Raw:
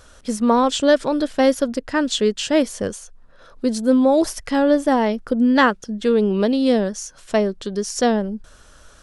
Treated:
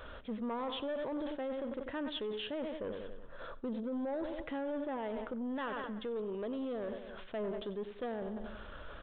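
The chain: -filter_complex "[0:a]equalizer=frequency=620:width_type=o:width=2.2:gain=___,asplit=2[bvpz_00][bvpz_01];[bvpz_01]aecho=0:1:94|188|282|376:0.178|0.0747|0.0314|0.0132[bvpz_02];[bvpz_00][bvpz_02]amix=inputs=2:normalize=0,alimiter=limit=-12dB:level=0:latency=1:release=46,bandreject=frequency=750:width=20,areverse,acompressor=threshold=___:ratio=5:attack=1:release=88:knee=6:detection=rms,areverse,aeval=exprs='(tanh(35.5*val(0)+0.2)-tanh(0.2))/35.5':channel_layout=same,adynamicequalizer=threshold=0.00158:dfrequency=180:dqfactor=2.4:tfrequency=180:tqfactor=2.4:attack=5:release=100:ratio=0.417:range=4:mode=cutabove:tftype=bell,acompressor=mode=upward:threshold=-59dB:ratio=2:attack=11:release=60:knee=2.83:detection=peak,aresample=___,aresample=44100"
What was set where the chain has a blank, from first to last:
4.5, -33dB, 8000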